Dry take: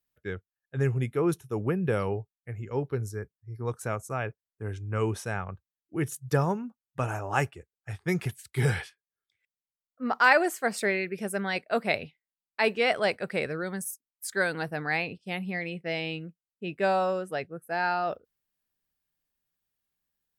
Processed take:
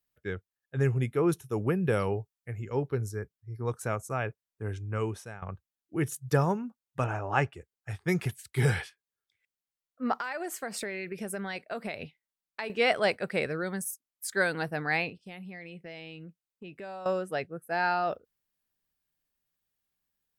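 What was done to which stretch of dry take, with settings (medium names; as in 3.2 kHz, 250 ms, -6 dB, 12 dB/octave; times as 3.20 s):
1.37–2.75 s: treble shelf 4 kHz +4.5 dB
4.78–5.42 s: fade out, to -16.5 dB
7.04–7.53 s: low-pass 3.9 kHz
10.20–12.70 s: compression 10:1, threshold -31 dBFS
15.09–17.06 s: compression 4:1, threshold -42 dBFS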